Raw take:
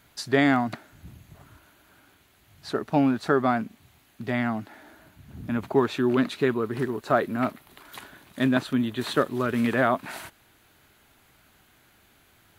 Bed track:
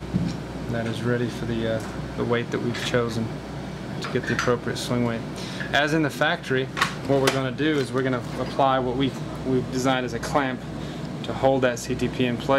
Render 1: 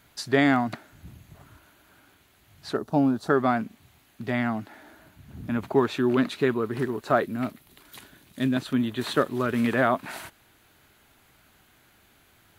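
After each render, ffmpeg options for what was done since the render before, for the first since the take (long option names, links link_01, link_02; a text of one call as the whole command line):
ffmpeg -i in.wav -filter_complex "[0:a]asettb=1/sr,asplit=3[link_01][link_02][link_03];[link_01]atrim=end=2.774[link_04];[link_02]atrim=start=2.77:end=3.3,asetpts=PTS-STARTPTS,afade=type=in:duration=0.004:curve=qsin,afade=type=out:start_time=0.526:duration=0.004:curve=qsin,equalizer=frequency=2200:width_type=o:width=1.1:gain=-14.5[link_05];[link_03]atrim=start=3.296[link_06];[link_04][link_05]acrossfade=duration=0.004:curve1=hsin:curve2=qsin[link_07];[link_07][link_06]acrossfade=duration=0.004:curve1=qsin:curve2=hsin,asettb=1/sr,asplit=3[link_08][link_09][link_10];[link_08]atrim=end=7.244[link_11];[link_09]atrim=start=7.24:end=8.66,asetpts=PTS-STARTPTS,afade=type=in:duration=0.004:curve=qsin,afade=type=out:start_time=1.416:duration=0.004:curve=qsin,equalizer=frequency=1000:width_type=o:width=2.4:gain=-8.5[link_12];[link_10]atrim=start=8.656[link_13];[link_11][link_12]acrossfade=duration=0.004:curve1=hsin:curve2=qsin[link_14];[link_14][link_13]acrossfade=duration=0.004:curve1=qsin:curve2=hsin" out.wav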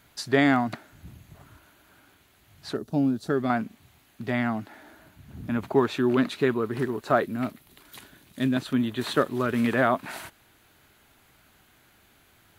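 ffmpeg -i in.wav -filter_complex "[0:a]asettb=1/sr,asplit=3[link_01][link_02][link_03];[link_01]atrim=end=2.744[link_04];[link_02]atrim=start=2.74:end=3.5,asetpts=PTS-STARTPTS,afade=type=in:duration=0.004:curve=qsin,afade=type=out:start_time=0.756:duration=0.004:curve=qsin,equalizer=frequency=990:width=0.87:gain=-11.5[link_05];[link_03]atrim=start=3.496[link_06];[link_04][link_05]acrossfade=duration=0.004:curve1=hsin:curve2=qsin[link_07];[link_07][link_06]acrossfade=duration=0.004:curve1=qsin:curve2=hsin" out.wav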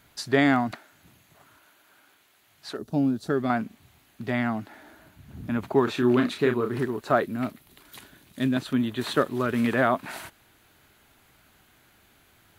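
ffmpeg -i in.wav -filter_complex "[0:a]asettb=1/sr,asplit=3[link_01][link_02][link_03];[link_01]atrim=end=0.714[link_04];[link_02]atrim=start=0.71:end=2.79,asetpts=PTS-STARTPTS,afade=type=in:duration=0.004:curve=qsin,afade=type=out:start_time=2.076:duration=0.004:curve=qsin,highpass=frequency=560:poles=1[link_05];[link_03]atrim=start=2.786[link_06];[link_04][link_05]acrossfade=duration=0.004:curve1=hsin:curve2=qsin[link_07];[link_07][link_06]acrossfade=duration=0.004:curve1=qsin:curve2=hsin,asettb=1/sr,asplit=3[link_08][link_09][link_10];[link_08]atrim=end=5.844[link_11];[link_09]atrim=start=5.84:end=6.79,asetpts=PTS-STARTPTS,afade=type=in:duration=0.004:curve=qsin,afade=type=out:start_time=0.946:duration=0.004:curve=qsin,asplit=2[link_12][link_13];[link_13]adelay=33,volume=-6dB[link_14];[link_12][link_14]amix=inputs=2:normalize=0,atrim=end_sample=41895[link_15];[link_10]atrim=start=6.786[link_16];[link_11][link_15]acrossfade=duration=0.004:curve1=hsin:curve2=qsin[link_17];[link_17][link_16]acrossfade=duration=0.004:curve1=qsin:curve2=hsin" out.wav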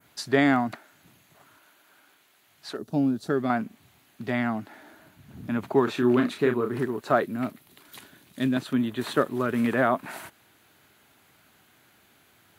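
ffmpeg -i in.wav -af "highpass=110,adynamicequalizer=threshold=0.00501:dfrequency=4200:dqfactor=0.82:tfrequency=4200:tqfactor=0.82:attack=5:release=100:ratio=0.375:range=2.5:mode=cutabove:tftype=bell" out.wav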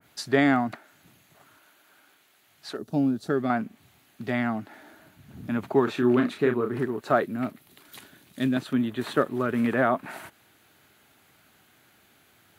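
ffmpeg -i in.wav -af "bandreject=frequency=1000:width=19,adynamicequalizer=threshold=0.00501:dfrequency=3300:dqfactor=0.7:tfrequency=3300:tqfactor=0.7:attack=5:release=100:ratio=0.375:range=2.5:mode=cutabove:tftype=highshelf" out.wav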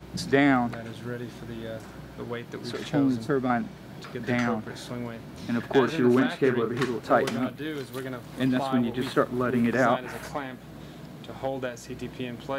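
ffmpeg -i in.wav -i bed.wav -filter_complex "[1:a]volume=-11dB[link_01];[0:a][link_01]amix=inputs=2:normalize=0" out.wav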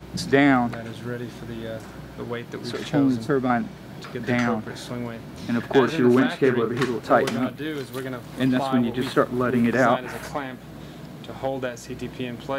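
ffmpeg -i in.wav -af "volume=3.5dB" out.wav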